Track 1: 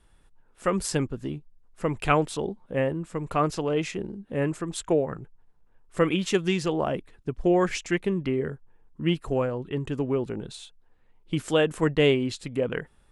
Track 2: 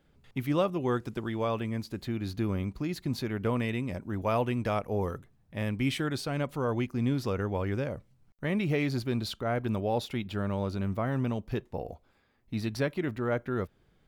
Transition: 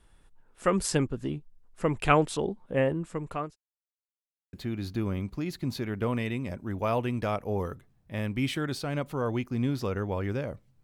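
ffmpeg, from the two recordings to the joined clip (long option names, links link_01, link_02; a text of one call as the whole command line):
ffmpeg -i cue0.wav -i cue1.wav -filter_complex "[0:a]apad=whole_dur=10.83,atrim=end=10.83,asplit=2[link_01][link_02];[link_01]atrim=end=3.56,asetpts=PTS-STARTPTS,afade=type=out:start_time=2.83:duration=0.73:curve=qsin[link_03];[link_02]atrim=start=3.56:end=4.53,asetpts=PTS-STARTPTS,volume=0[link_04];[1:a]atrim=start=1.96:end=8.26,asetpts=PTS-STARTPTS,afade=type=in:duration=0.004:curve=hsin[link_05];[link_03][link_04][link_05]concat=n=3:v=0:a=1" out.wav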